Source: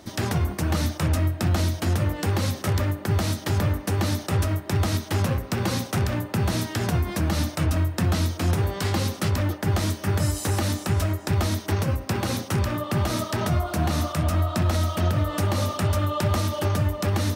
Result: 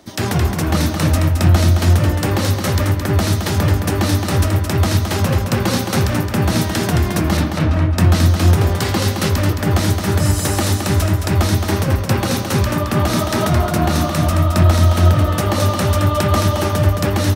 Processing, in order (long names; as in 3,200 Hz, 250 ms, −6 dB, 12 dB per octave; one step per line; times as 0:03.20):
0:07.37–0:07.91: low-pass filter 3,400 Hz 12 dB per octave
repeating echo 218 ms, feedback 28%, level −5 dB
multiband upward and downward expander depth 40%
level +7.5 dB